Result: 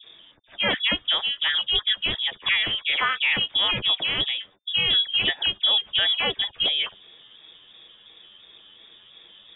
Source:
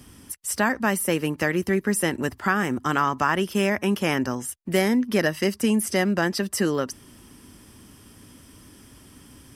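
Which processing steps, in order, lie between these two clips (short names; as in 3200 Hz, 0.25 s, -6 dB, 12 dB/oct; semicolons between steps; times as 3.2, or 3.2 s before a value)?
trilling pitch shifter +10.5 st, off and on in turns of 0.175 s; dispersion highs, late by 49 ms, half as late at 1600 Hz; inverted band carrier 3600 Hz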